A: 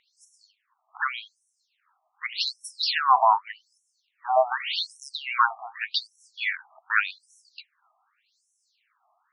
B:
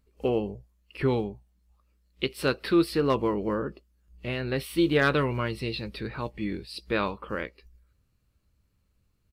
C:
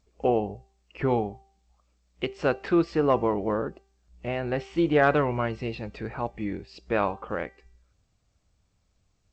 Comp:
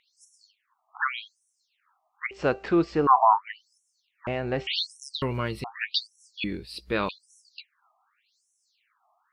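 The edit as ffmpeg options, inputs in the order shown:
-filter_complex "[2:a]asplit=2[s0][s1];[1:a]asplit=2[s2][s3];[0:a]asplit=5[s4][s5][s6][s7][s8];[s4]atrim=end=2.312[s9];[s0]atrim=start=2.308:end=3.072[s10];[s5]atrim=start=3.068:end=4.272[s11];[s1]atrim=start=4.268:end=4.672[s12];[s6]atrim=start=4.668:end=5.222[s13];[s2]atrim=start=5.218:end=5.642[s14];[s7]atrim=start=5.638:end=6.442[s15];[s3]atrim=start=6.438:end=7.092[s16];[s8]atrim=start=7.088[s17];[s9][s10]acrossfade=d=0.004:c1=hsin:c2=hsin[s18];[s18][s11]acrossfade=d=0.004:c1=hsin:c2=hsin[s19];[s19][s12]acrossfade=d=0.004:c1=hsin:c2=hsin[s20];[s20][s13]acrossfade=d=0.004:c1=hsin:c2=hsin[s21];[s21][s14]acrossfade=d=0.004:c1=hsin:c2=hsin[s22];[s22][s15]acrossfade=d=0.004:c1=hsin:c2=hsin[s23];[s23][s16]acrossfade=d=0.004:c1=hsin:c2=hsin[s24];[s24][s17]acrossfade=d=0.004:c1=hsin:c2=hsin"

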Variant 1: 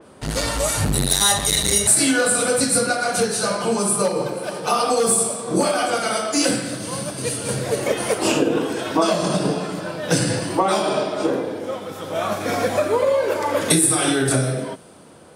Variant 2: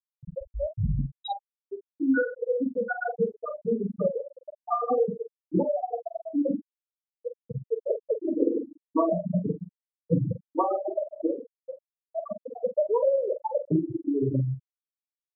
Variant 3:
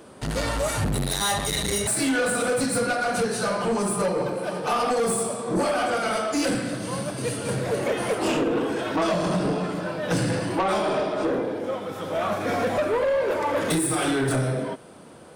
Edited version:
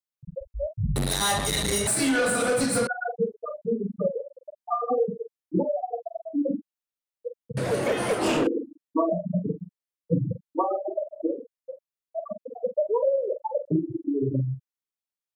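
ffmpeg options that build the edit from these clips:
-filter_complex "[2:a]asplit=2[s0][s1];[1:a]asplit=3[s2][s3][s4];[s2]atrim=end=0.962[s5];[s0]atrim=start=0.958:end=2.872[s6];[s3]atrim=start=2.868:end=7.572[s7];[s1]atrim=start=7.568:end=8.472[s8];[s4]atrim=start=8.468[s9];[s5][s6]acrossfade=d=0.004:c1=hsin:c2=hsin[s10];[s10][s7]acrossfade=d=0.004:c1=hsin:c2=hsin[s11];[s11][s8]acrossfade=d=0.004:c1=hsin:c2=hsin[s12];[s12][s9]acrossfade=d=0.004:c1=hsin:c2=hsin"

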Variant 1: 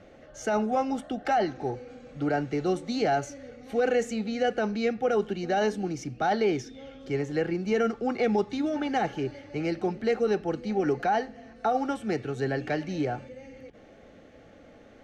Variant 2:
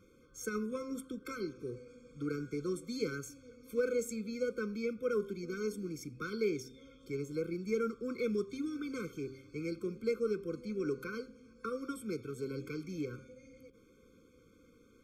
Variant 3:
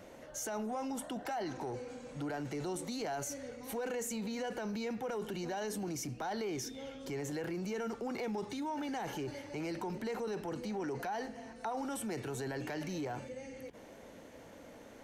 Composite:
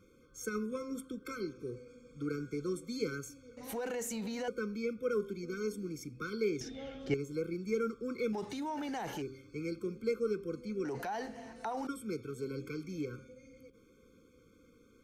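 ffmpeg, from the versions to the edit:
-filter_complex "[2:a]asplit=3[s0][s1][s2];[1:a]asplit=5[s3][s4][s5][s6][s7];[s3]atrim=end=3.572[s8];[s0]atrim=start=3.568:end=4.482[s9];[s4]atrim=start=4.478:end=6.612[s10];[0:a]atrim=start=6.608:end=7.142[s11];[s5]atrim=start=7.138:end=8.332[s12];[s1]atrim=start=8.328:end=9.222[s13];[s6]atrim=start=9.218:end=10.852[s14];[s2]atrim=start=10.848:end=11.872[s15];[s7]atrim=start=11.868[s16];[s8][s9]acrossfade=d=0.004:c1=hsin:c2=hsin[s17];[s17][s10]acrossfade=d=0.004:c1=hsin:c2=hsin[s18];[s18][s11]acrossfade=d=0.004:c1=hsin:c2=hsin[s19];[s19][s12]acrossfade=d=0.004:c1=hsin:c2=hsin[s20];[s20][s13]acrossfade=d=0.004:c1=hsin:c2=hsin[s21];[s21][s14]acrossfade=d=0.004:c1=hsin:c2=hsin[s22];[s22][s15]acrossfade=d=0.004:c1=hsin:c2=hsin[s23];[s23][s16]acrossfade=d=0.004:c1=hsin:c2=hsin"

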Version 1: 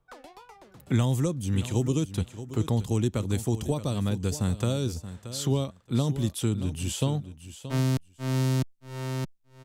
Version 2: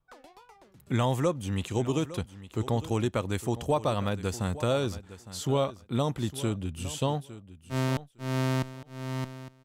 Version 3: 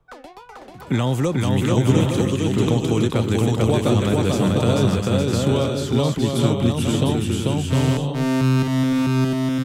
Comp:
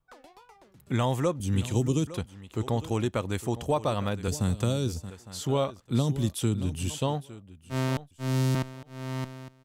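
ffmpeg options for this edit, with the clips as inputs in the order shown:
-filter_complex "[0:a]asplit=4[s0][s1][s2][s3];[1:a]asplit=5[s4][s5][s6][s7][s8];[s4]atrim=end=1.402[s9];[s0]atrim=start=1.398:end=2.072[s10];[s5]atrim=start=2.068:end=4.282[s11];[s1]atrim=start=4.278:end=5.102[s12];[s6]atrim=start=5.098:end=5.802[s13];[s2]atrim=start=5.798:end=6.902[s14];[s7]atrim=start=6.898:end=8.112[s15];[s3]atrim=start=8.108:end=8.552[s16];[s8]atrim=start=8.548[s17];[s9][s10]acrossfade=d=0.004:c1=hsin:c2=hsin[s18];[s18][s11]acrossfade=d=0.004:c1=hsin:c2=hsin[s19];[s19][s12]acrossfade=d=0.004:c1=hsin:c2=hsin[s20];[s20][s13]acrossfade=d=0.004:c1=hsin:c2=hsin[s21];[s21][s14]acrossfade=d=0.004:c1=hsin:c2=hsin[s22];[s22][s15]acrossfade=d=0.004:c1=hsin:c2=hsin[s23];[s23][s16]acrossfade=d=0.004:c1=hsin:c2=hsin[s24];[s24][s17]acrossfade=d=0.004:c1=hsin:c2=hsin"

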